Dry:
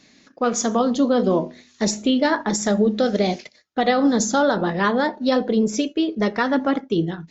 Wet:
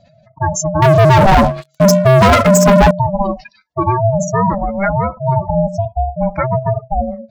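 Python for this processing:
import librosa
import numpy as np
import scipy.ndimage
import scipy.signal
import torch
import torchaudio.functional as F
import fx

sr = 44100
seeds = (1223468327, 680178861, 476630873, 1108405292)

y = fx.spec_expand(x, sr, power=2.9)
y = fx.leveller(y, sr, passes=5, at=(0.82, 2.91))
y = y * np.sin(2.0 * np.pi * 390.0 * np.arange(len(y)) / sr)
y = y * librosa.db_to_amplitude(7.5)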